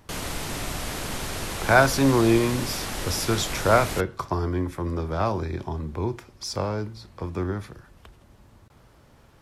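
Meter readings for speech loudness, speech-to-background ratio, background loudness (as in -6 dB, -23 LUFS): -25.0 LUFS, 6.5 dB, -31.5 LUFS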